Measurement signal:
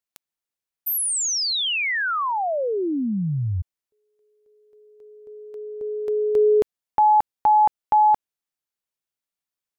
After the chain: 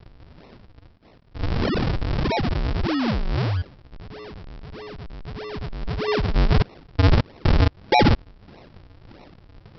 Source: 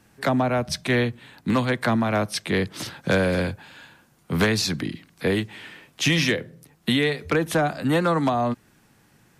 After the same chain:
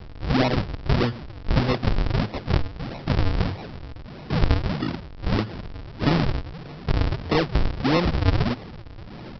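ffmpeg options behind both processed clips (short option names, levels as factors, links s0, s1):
-af "aeval=exprs='val(0)+0.5*0.0251*sgn(val(0))':c=same,aresample=11025,acrusher=samples=33:mix=1:aa=0.000001:lfo=1:lforange=52.8:lforate=1.6,aresample=44100"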